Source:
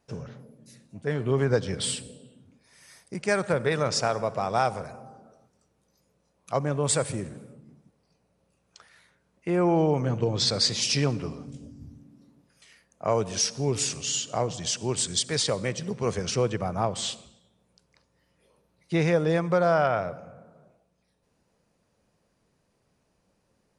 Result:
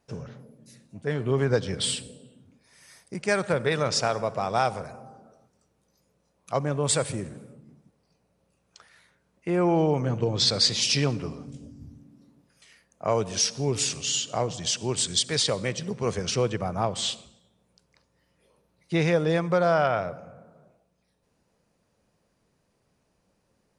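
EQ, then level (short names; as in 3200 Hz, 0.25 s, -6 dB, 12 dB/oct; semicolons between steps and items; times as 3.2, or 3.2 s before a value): dynamic EQ 3400 Hz, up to +4 dB, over -41 dBFS, Q 1.3; 0.0 dB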